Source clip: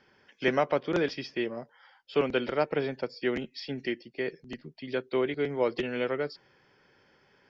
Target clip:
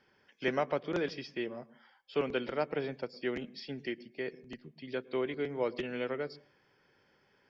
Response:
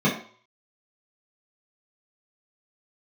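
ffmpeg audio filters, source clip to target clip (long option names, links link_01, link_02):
-filter_complex "[0:a]asplit=2[link_01][link_02];[1:a]atrim=start_sample=2205,adelay=103[link_03];[link_02][link_03]afir=irnorm=-1:irlink=0,volume=-39dB[link_04];[link_01][link_04]amix=inputs=2:normalize=0,volume=-5.5dB"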